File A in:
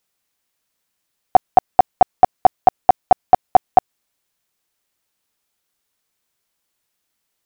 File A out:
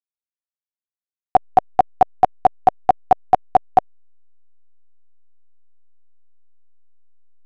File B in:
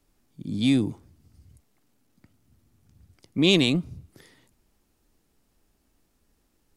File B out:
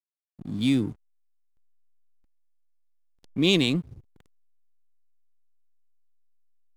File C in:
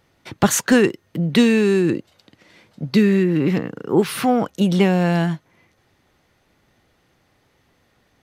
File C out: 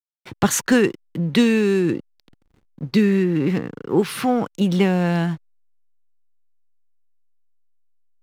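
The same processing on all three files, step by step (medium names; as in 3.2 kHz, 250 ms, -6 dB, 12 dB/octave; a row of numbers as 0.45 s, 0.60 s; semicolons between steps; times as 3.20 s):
hysteresis with a dead band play -37 dBFS; peaking EQ 630 Hz -4.5 dB 0.27 oct; trim -1.5 dB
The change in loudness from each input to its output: -2.5 LU, -1.5 LU, -1.5 LU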